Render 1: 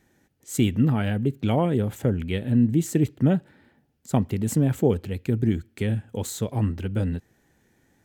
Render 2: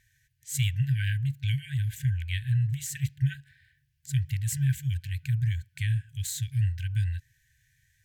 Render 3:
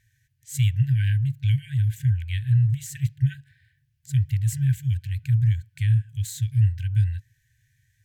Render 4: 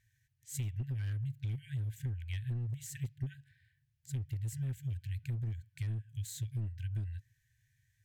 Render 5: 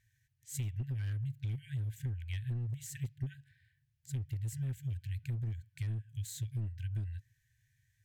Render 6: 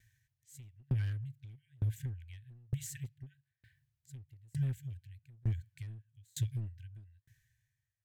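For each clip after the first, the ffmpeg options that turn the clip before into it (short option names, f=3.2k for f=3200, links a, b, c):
-af "afftfilt=real='re*(1-between(b*sr/4096,150,1500))':imag='im*(1-between(b*sr/4096,150,1500))':win_size=4096:overlap=0.75"
-af "equalizer=f=110:w=2.1:g=9.5,volume=-2dB"
-af "aeval=exprs='clip(val(0),-1,0.119)':c=same,acompressor=threshold=-26dB:ratio=6,volume=-8dB"
-af anull
-af "aeval=exprs='val(0)*pow(10,-33*if(lt(mod(1.1*n/s,1),2*abs(1.1)/1000),1-mod(1.1*n/s,1)/(2*abs(1.1)/1000),(mod(1.1*n/s,1)-2*abs(1.1)/1000)/(1-2*abs(1.1)/1000))/20)':c=same,volume=7dB"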